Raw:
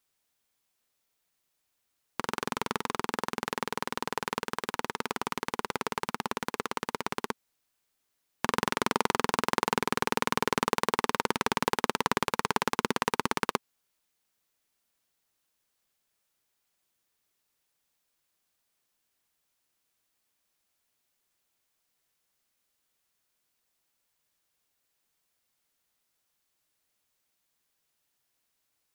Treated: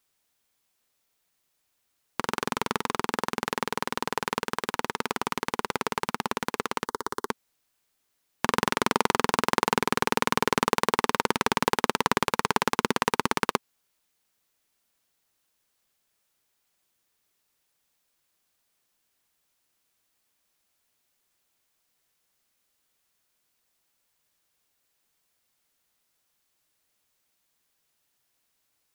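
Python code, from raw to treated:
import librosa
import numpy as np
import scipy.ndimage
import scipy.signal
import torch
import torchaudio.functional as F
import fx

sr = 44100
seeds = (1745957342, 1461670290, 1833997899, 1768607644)

y = fx.fixed_phaser(x, sr, hz=670.0, stages=6, at=(6.86, 7.29))
y = y * librosa.db_to_amplitude(3.5)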